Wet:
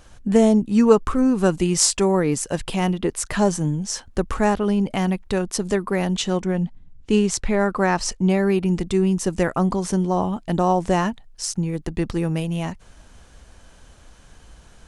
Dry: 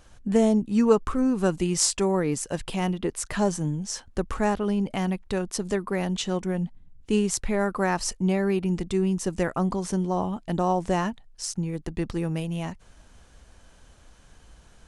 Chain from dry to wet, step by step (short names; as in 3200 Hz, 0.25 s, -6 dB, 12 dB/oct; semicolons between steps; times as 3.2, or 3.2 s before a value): 6.42–8.3 LPF 7700 Hz 12 dB/oct; gain +5 dB